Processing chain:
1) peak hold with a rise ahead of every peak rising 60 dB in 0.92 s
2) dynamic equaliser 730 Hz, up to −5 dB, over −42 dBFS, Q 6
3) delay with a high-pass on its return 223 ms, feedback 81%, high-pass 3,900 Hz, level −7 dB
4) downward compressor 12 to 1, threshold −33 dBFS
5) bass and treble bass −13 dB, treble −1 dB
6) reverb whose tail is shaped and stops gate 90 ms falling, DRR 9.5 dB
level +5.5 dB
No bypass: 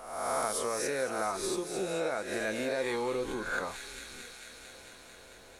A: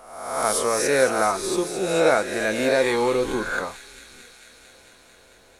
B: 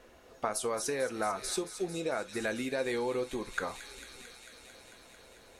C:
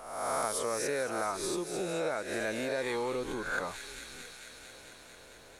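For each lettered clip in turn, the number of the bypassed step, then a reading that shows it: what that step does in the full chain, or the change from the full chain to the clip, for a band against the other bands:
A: 4, average gain reduction 6.0 dB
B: 1, 125 Hz band +2.0 dB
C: 6, 125 Hz band +1.5 dB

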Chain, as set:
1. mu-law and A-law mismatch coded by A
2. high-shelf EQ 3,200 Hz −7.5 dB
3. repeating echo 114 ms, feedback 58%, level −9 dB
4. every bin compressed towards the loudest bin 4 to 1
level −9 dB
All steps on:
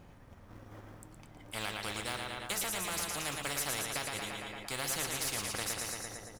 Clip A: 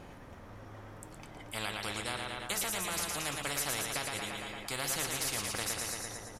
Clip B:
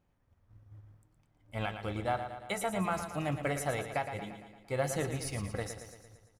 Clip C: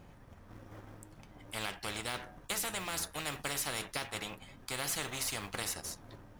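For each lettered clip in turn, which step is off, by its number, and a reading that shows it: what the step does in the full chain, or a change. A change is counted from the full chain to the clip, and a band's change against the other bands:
1, distortion level −24 dB
4, 4 kHz band −15.0 dB
3, change in crest factor +1.5 dB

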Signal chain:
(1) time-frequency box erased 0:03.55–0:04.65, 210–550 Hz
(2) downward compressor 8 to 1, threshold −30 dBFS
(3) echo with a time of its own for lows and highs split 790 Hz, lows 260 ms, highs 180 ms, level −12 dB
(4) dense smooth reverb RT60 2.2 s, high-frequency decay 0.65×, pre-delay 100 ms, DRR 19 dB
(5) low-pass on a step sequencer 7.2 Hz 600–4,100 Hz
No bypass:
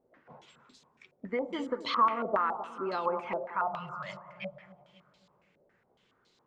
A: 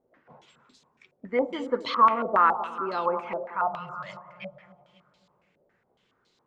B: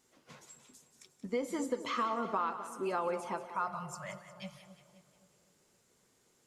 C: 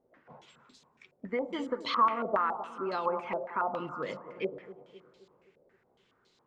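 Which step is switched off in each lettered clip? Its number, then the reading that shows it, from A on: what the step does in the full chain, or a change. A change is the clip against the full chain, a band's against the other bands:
2, average gain reduction 2.5 dB
5, 125 Hz band +4.0 dB
1, change in momentary loudness spread −2 LU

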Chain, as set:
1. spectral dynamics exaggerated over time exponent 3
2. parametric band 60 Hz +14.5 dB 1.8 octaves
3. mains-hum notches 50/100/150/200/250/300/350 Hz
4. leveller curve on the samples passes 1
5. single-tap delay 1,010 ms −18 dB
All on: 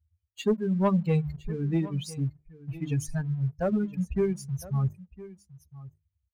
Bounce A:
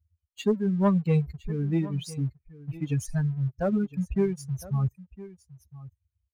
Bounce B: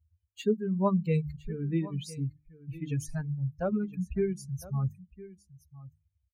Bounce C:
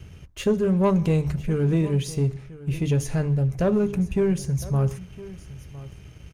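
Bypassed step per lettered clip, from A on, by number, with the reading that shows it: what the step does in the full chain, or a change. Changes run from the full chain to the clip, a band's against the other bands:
3, change in integrated loudness +1.0 LU
4, change in crest factor +3.0 dB
1, change in integrated loudness +5.5 LU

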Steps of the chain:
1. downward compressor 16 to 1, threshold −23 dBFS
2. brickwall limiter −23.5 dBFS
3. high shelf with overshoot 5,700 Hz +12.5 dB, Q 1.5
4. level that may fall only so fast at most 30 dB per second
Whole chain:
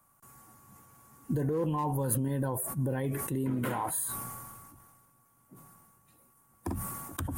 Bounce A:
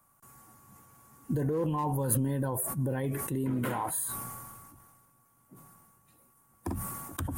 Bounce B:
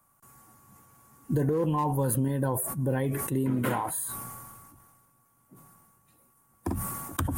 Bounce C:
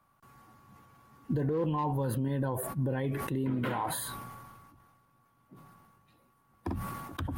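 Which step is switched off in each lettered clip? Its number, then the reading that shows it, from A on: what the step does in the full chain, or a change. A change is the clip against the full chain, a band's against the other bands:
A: 1, average gain reduction 4.0 dB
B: 2, average gain reduction 1.5 dB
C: 3, 8 kHz band −8.0 dB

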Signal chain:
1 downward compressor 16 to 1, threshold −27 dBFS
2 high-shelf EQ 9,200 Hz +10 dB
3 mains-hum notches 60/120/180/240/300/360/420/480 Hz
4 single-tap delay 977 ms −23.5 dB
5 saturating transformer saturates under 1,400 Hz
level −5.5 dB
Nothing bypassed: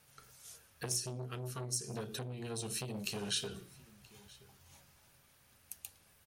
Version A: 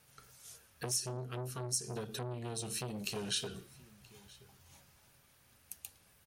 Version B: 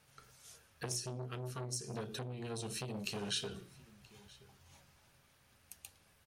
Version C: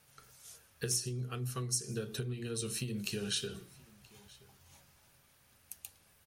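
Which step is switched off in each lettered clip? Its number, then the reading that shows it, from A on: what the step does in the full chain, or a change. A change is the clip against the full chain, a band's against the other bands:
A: 3, 1 kHz band +2.0 dB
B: 2, 8 kHz band −3.5 dB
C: 5, change in crest factor −2.5 dB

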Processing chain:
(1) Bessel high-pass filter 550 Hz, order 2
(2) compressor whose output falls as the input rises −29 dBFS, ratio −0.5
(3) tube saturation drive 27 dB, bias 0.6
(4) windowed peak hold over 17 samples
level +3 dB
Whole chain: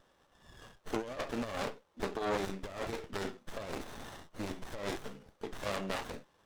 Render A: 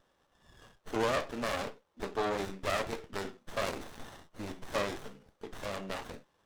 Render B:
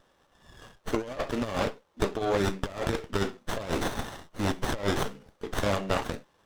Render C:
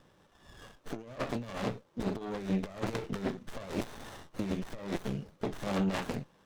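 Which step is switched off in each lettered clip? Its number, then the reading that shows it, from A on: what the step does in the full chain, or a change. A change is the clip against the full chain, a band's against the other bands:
2, change in momentary loudness spread +5 LU
3, change in crest factor −2.0 dB
1, 125 Hz band +9.5 dB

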